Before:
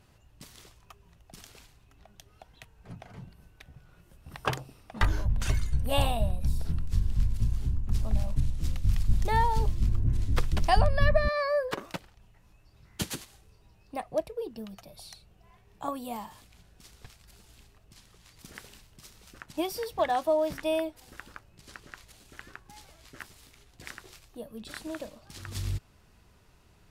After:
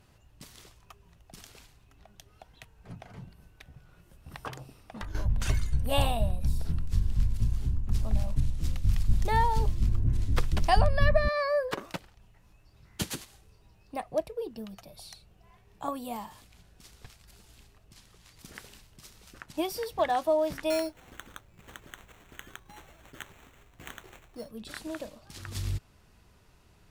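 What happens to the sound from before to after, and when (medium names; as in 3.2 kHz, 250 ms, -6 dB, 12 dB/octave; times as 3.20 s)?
4.47–5.15 s: compression 4:1, threshold -37 dBFS
20.70–24.51 s: sample-rate reducer 4.9 kHz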